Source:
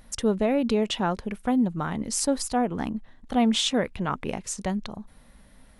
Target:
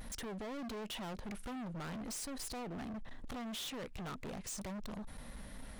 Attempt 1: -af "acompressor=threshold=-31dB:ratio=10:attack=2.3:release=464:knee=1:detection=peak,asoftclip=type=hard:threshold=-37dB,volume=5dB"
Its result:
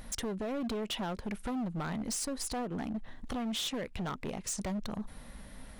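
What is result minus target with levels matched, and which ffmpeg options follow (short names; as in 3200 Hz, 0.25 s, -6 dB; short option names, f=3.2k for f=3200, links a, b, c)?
hard clip: distortion -6 dB
-af "acompressor=threshold=-31dB:ratio=10:attack=2.3:release=464:knee=1:detection=peak,asoftclip=type=hard:threshold=-46.5dB,volume=5dB"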